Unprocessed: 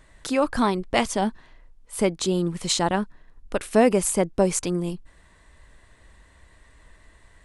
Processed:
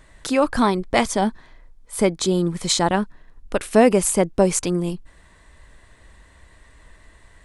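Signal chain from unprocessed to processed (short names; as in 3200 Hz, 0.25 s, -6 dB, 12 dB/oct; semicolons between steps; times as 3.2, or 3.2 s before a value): 0.65–2.88 notch 2800 Hz, Q 9.3; gain +3.5 dB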